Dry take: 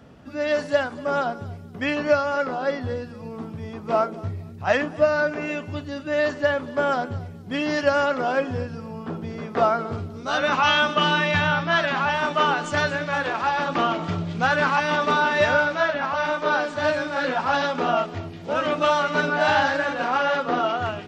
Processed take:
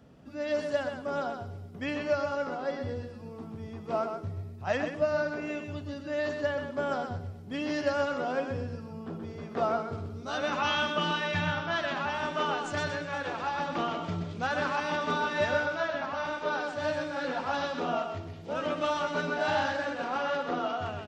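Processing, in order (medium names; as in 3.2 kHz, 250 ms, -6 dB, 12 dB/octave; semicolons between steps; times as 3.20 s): peaking EQ 1.6 kHz -4 dB 2.4 oct; on a send: delay 127 ms -6.5 dB; on the sum: trim -7 dB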